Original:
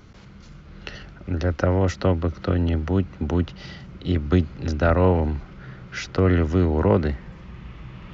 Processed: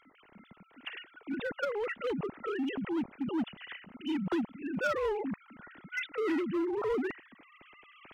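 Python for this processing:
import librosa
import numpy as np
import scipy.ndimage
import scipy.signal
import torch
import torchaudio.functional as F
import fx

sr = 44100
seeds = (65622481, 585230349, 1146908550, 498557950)

p1 = fx.sine_speech(x, sr)
p2 = fx.peak_eq(p1, sr, hz=560.0, db=-12.5, octaves=3.0)
p3 = 10.0 ** (-29.5 / 20.0) * (np.abs((p2 / 10.0 ** (-29.5 / 20.0) + 3.0) % 4.0 - 2.0) - 1.0)
p4 = p2 + F.gain(torch.from_numpy(p3), -5.0).numpy()
y = F.gain(torch.from_numpy(p4), -4.0).numpy()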